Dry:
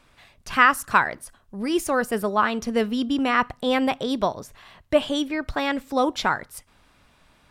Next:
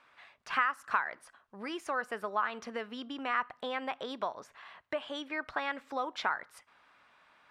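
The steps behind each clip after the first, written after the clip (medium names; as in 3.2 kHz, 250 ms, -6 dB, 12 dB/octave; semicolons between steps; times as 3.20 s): compression 6:1, threshold -25 dBFS, peak gain reduction 14 dB; band-pass filter 1.4 kHz, Q 0.97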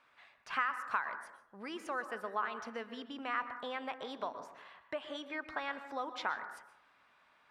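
reverberation RT60 0.75 s, pre-delay 112 ms, DRR 10 dB; trim -4.5 dB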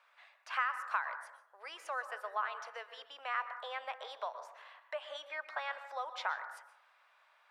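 steep high-pass 530 Hz 36 dB/octave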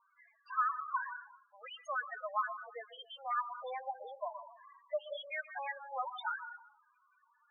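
loudest bins only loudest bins 4; trim +5 dB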